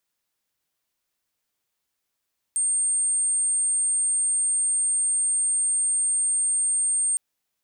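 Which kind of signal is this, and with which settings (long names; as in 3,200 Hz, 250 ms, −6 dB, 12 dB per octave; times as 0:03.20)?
tone sine 8,640 Hz −20 dBFS 4.61 s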